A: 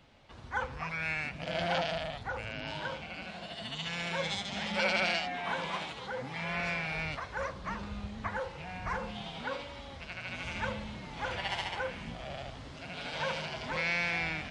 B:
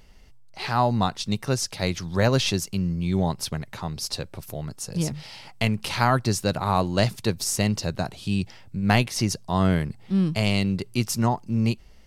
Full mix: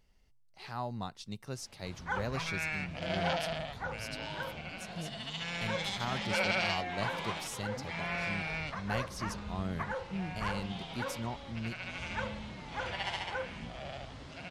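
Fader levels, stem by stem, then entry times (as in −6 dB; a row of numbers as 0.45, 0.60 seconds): −1.5, −16.5 decibels; 1.55, 0.00 seconds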